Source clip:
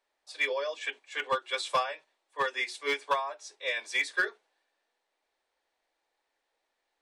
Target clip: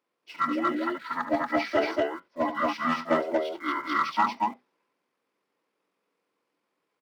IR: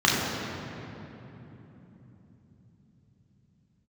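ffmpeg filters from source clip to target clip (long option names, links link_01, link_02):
-filter_complex "[0:a]highpass=frequency=130:width=0.5412,highpass=frequency=130:width=1.3066,asetrate=25476,aresample=44100,atempo=1.73107,asplit=2[link_01][link_02];[link_02]aeval=exprs='val(0)*gte(abs(val(0)),0.00562)':channel_layout=same,volume=-9dB[link_03];[link_01][link_03]amix=inputs=2:normalize=0,aecho=1:1:75.8|233.2:0.316|0.891"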